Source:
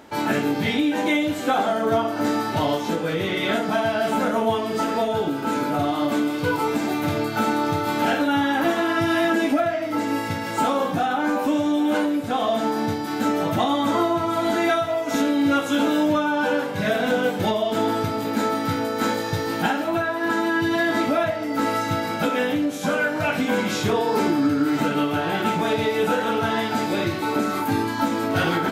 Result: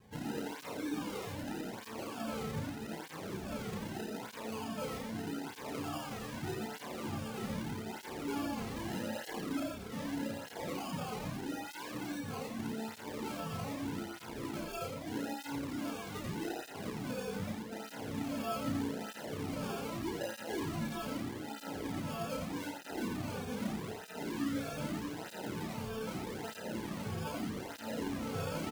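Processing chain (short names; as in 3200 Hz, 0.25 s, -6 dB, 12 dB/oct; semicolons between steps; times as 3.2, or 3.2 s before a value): bell 360 Hz -7.5 dB 2.4 oct; limiter -22.5 dBFS, peak gain reduction 9.5 dB; fixed phaser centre 1500 Hz, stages 4; decimation with a swept rate 31×, swing 60% 0.8 Hz; doubler 32 ms -3 dB; on a send: echo 86 ms -5 dB; on the sum: tape flanging out of phase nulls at 0.81 Hz, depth 3.5 ms; gain -5 dB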